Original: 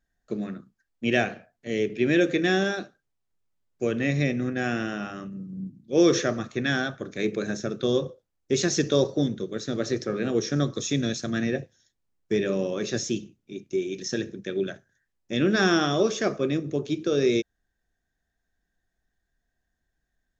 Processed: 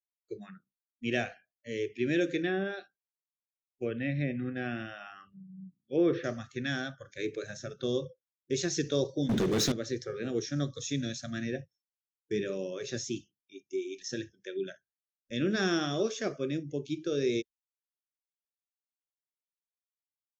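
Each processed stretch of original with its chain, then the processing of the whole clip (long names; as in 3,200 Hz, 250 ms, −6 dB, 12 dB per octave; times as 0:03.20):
0:02.42–0:06.24: low-pass filter 4,800 Hz 24 dB per octave + treble cut that deepens with the level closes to 2,000 Hz, closed at −18.5 dBFS
0:09.29–0:09.72: leveller curve on the samples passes 5 + envelope flattener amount 50%
whole clip: dynamic equaliser 1,000 Hz, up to −5 dB, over −39 dBFS, Q 1.3; noise gate with hold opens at −46 dBFS; noise reduction from a noise print of the clip's start 24 dB; level −6.5 dB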